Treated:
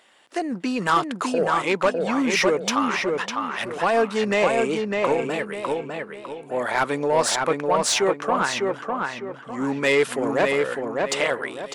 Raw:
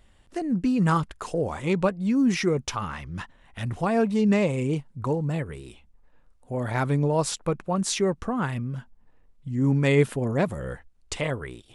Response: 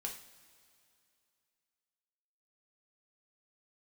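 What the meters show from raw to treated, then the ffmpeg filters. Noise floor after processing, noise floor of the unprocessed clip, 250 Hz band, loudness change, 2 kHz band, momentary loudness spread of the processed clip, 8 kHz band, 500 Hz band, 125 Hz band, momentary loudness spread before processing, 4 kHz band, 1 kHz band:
-42 dBFS, -58 dBFS, -2.0 dB, +3.0 dB, +9.0 dB, 9 LU, +6.5 dB, +5.5 dB, -11.0 dB, 15 LU, +8.5 dB, +8.5 dB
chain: -filter_complex "[0:a]highpass=300,asplit=2[s0][s1];[s1]highpass=f=720:p=1,volume=6.31,asoftclip=type=tanh:threshold=0.355[s2];[s0][s2]amix=inputs=2:normalize=0,lowpass=f=6000:p=1,volume=0.501,asplit=2[s3][s4];[s4]adelay=603,lowpass=f=3200:p=1,volume=0.708,asplit=2[s5][s6];[s6]adelay=603,lowpass=f=3200:p=1,volume=0.36,asplit=2[s7][s8];[s8]adelay=603,lowpass=f=3200:p=1,volume=0.36,asplit=2[s9][s10];[s10]adelay=603,lowpass=f=3200:p=1,volume=0.36,asplit=2[s11][s12];[s12]adelay=603,lowpass=f=3200:p=1,volume=0.36[s13];[s3][s5][s7][s9][s11][s13]amix=inputs=6:normalize=0"

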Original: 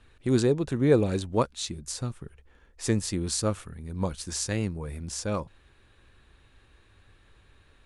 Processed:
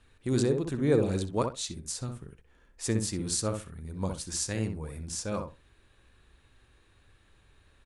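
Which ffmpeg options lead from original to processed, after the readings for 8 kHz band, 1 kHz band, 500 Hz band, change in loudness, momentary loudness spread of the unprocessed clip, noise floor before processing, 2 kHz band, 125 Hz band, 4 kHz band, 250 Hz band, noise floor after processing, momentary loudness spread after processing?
0.0 dB, -3.5 dB, -3.0 dB, -2.5 dB, 13 LU, -61 dBFS, -3.5 dB, -3.0 dB, -2.5 dB, -3.0 dB, -64 dBFS, 12 LU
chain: -filter_complex "[0:a]equalizer=f=9100:t=o:w=1.5:g=5,asplit=2[s0][s1];[s1]adelay=63,lowpass=f=1500:p=1,volume=0.596,asplit=2[s2][s3];[s3]adelay=63,lowpass=f=1500:p=1,volume=0.18,asplit=2[s4][s5];[s5]adelay=63,lowpass=f=1500:p=1,volume=0.18[s6];[s2][s4][s6]amix=inputs=3:normalize=0[s7];[s0][s7]amix=inputs=2:normalize=0,volume=0.596"

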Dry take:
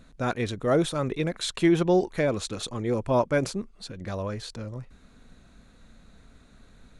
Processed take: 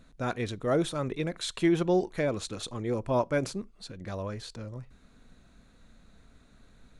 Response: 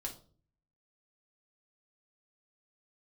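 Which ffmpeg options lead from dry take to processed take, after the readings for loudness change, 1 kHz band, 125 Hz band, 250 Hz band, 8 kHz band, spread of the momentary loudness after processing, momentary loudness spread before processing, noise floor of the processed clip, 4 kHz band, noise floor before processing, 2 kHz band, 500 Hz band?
-4.0 dB, -4.0 dB, -4.0 dB, -3.5 dB, -4.0 dB, 15 LU, 15 LU, -59 dBFS, -4.0 dB, -56 dBFS, -4.0 dB, -4.0 dB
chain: -filter_complex "[0:a]asplit=2[s0][s1];[1:a]atrim=start_sample=2205,afade=t=out:st=0.15:d=0.01,atrim=end_sample=7056[s2];[s1][s2]afir=irnorm=-1:irlink=0,volume=0.119[s3];[s0][s3]amix=inputs=2:normalize=0,volume=0.596"

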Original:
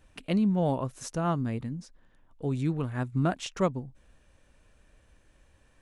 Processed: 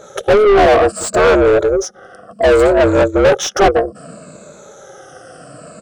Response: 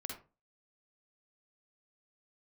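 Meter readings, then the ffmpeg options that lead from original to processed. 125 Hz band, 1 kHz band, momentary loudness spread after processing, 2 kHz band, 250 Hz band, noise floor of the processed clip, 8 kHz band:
+4.5 dB, +20.0 dB, 8 LU, +24.0 dB, +10.0 dB, -41 dBFS, +20.5 dB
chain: -filter_complex "[0:a]afftfilt=real='re*pow(10,21/40*sin(2*PI*(1.2*log(max(b,1)*sr/1024/100)/log(2)-(-0.64)*(pts-256)/sr)))':imag='im*pow(10,21/40*sin(2*PI*(1.2*log(max(b,1)*sr/1024/100)/log(2)-(-0.64)*(pts-256)/sr)))':win_size=1024:overlap=0.75,aeval=exprs='val(0)*sin(2*PI*210*n/s)':c=same,firequalizer=gain_entry='entry(150,0);entry(220,-13);entry(370,-1);entry(600,10);entry(900,-13);entry(1300,1);entry(2000,-18);entry(5000,-1);entry(7800,7);entry(13000,-14)':delay=0.05:min_phase=1,asplit=2[s0][s1];[s1]highpass=f=720:p=1,volume=35.5,asoftclip=type=tanh:threshold=0.299[s2];[s0][s2]amix=inputs=2:normalize=0,lowpass=f=3000:p=1,volume=0.501,adynamicequalizer=threshold=0.01:dfrequency=5200:dqfactor=0.7:tfrequency=5200:tqfactor=0.7:attack=5:release=100:ratio=0.375:range=2.5:mode=cutabove:tftype=highshelf,volume=2.51"

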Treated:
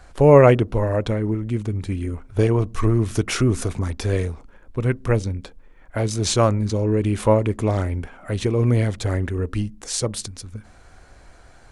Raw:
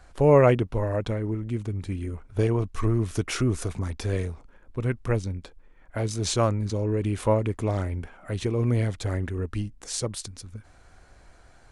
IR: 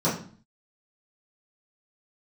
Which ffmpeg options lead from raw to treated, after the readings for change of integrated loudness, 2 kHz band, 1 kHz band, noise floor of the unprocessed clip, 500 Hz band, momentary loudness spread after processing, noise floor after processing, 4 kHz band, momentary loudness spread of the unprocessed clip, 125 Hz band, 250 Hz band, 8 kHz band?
+5.5 dB, +5.5 dB, +5.5 dB, -54 dBFS, +5.5 dB, 12 LU, -48 dBFS, +5.5 dB, 12 LU, +5.0 dB, +5.5 dB, +5.5 dB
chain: -filter_complex "[0:a]asplit=2[s0][s1];[1:a]atrim=start_sample=2205,asetrate=52920,aresample=44100,lowpass=1000[s2];[s1][s2]afir=irnorm=-1:irlink=0,volume=0.0168[s3];[s0][s3]amix=inputs=2:normalize=0,volume=1.88"

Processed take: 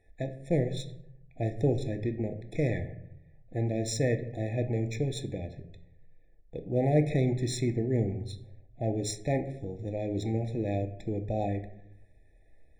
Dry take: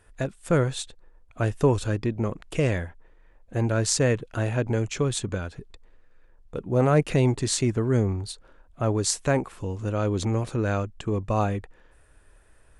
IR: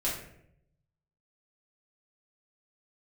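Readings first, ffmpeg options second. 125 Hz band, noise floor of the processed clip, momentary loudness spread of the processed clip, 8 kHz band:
-5.0 dB, -58 dBFS, 12 LU, -11.5 dB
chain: -filter_complex "[0:a]asplit=2[s0][s1];[1:a]atrim=start_sample=2205[s2];[s1][s2]afir=irnorm=-1:irlink=0,volume=0.266[s3];[s0][s3]amix=inputs=2:normalize=0,adynamicsmooth=sensitivity=3:basefreq=5100,afftfilt=real='re*eq(mod(floor(b*sr/1024/850),2),0)':imag='im*eq(mod(floor(b*sr/1024/850),2),0)':win_size=1024:overlap=0.75,volume=0.422"

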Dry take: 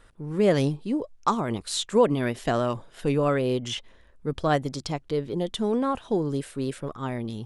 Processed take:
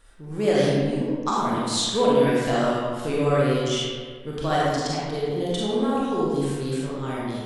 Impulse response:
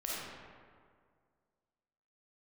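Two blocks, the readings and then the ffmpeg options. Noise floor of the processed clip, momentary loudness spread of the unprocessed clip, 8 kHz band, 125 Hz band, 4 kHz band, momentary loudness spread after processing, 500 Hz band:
-38 dBFS, 10 LU, +5.0 dB, +2.0 dB, +5.5 dB, 9 LU, +3.0 dB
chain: -filter_complex "[0:a]acrossover=split=9000[s0][s1];[s1]acompressor=threshold=0.00158:ratio=4:attack=1:release=60[s2];[s0][s2]amix=inputs=2:normalize=0,highshelf=f=3800:g=9.5[s3];[1:a]atrim=start_sample=2205,asetrate=52920,aresample=44100[s4];[s3][s4]afir=irnorm=-1:irlink=0"

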